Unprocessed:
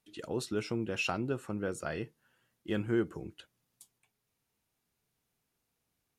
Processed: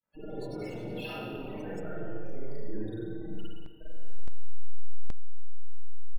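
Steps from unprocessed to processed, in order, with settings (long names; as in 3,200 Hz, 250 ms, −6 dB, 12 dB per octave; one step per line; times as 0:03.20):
hold until the input has moved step −40 dBFS
comb filter 6.4 ms, depth 57%
downward compressor 12 to 1, threshold −47 dBFS, peak gain reduction 23.5 dB
transient designer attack −4 dB, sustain +7 dB
surface crackle 49 per second −60 dBFS
spectral peaks only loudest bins 16
spring reverb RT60 1.8 s, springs 42/47 ms, chirp 50 ms, DRR −7.5 dB
delay with pitch and tempo change per echo 189 ms, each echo +4 semitones, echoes 3, each echo −6 dB
linearly interpolated sample-rate reduction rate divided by 3×
level +5.5 dB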